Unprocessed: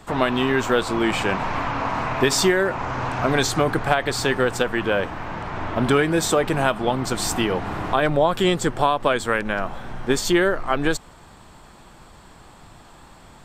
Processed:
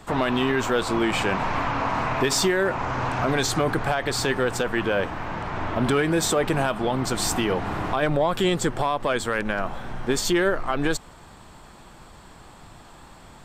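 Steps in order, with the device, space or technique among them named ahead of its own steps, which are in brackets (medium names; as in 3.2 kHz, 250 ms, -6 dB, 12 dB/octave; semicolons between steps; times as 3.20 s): soft clipper into limiter (saturation -7.5 dBFS, distortion -23 dB; peak limiter -13.5 dBFS, peak gain reduction 5.5 dB)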